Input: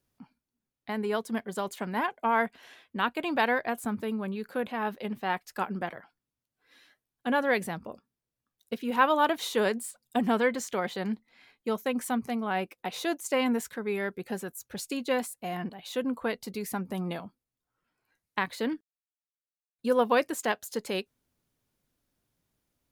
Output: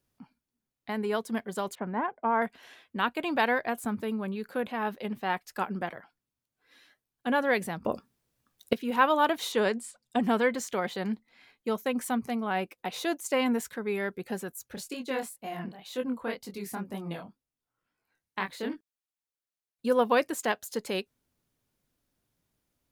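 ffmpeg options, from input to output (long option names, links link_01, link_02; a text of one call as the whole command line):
ffmpeg -i in.wav -filter_complex "[0:a]asettb=1/sr,asplit=3[link_01][link_02][link_03];[link_01]atrim=end=1.754[link_04];[link_02]atrim=start=1.75:end=2.42,asetpts=PTS-STARTPTS,afade=type=in:duration=0.004:curve=qsin,afade=type=out:start_time=0.666:duration=0.004:curve=qsin,lowpass=1400[link_05];[link_03]atrim=start=2.416[link_06];[link_04][link_05]acrossfade=duration=0.004:curve1=hsin:curve2=qsin[link_07];[link_07][link_06]acrossfade=duration=0.004:curve1=qsin:curve2=hsin,asettb=1/sr,asplit=3[link_08][link_09][link_10];[link_08]atrim=end=9.524[link_11];[link_09]atrim=start=9.52:end=10.22,asetpts=PTS-STARTPTS,afade=type=in:duration=0.004:curve=qsin,afade=type=out:start_time=0.696:duration=0.004:curve=qsin,lowpass=8200[link_12];[link_10]atrim=start=10.216[link_13];[link_11][link_12]acrossfade=duration=0.004:curve1=hsin:curve2=qsin[link_14];[link_14][link_13]acrossfade=duration=0.004:curve1=qsin:curve2=hsin,asplit=3[link_15][link_16][link_17];[link_15]afade=type=out:start_time=14.74:duration=0.02[link_18];[link_16]flanger=delay=19.5:depth=7.9:speed=2,afade=type=in:start_time=14.74:duration=0.02,afade=type=out:start_time=18.74:duration=0.02[link_19];[link_17]afade=type=in:start_time=18.74:duration=0.02[link_20];[link_18][link_19][link_20]amix=inputs=3:normalize=0,asplit=3[link_21][link_22][link_23];[link_21]atrim=end=7.852[link_24];[link_22]atrim=start=7.848:end=8.732,asetpts=PTS-STARTPTS,volume=11.5dB[link_25];[link_23]atrim=start=8.728[link_26];[link_24][link_25]acrossfade=duration=0.004:curve1=hsin:curve2=hsin[link_27];[link_27][link_26]acrossfade=duration=0.004:curve1=hsin:curve2=hsin" out.wav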